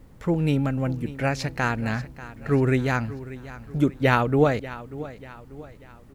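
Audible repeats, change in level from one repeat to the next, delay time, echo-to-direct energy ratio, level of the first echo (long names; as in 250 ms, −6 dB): 3, −7.0 dB, 589 ms, −15.0 dB, −16.0 dB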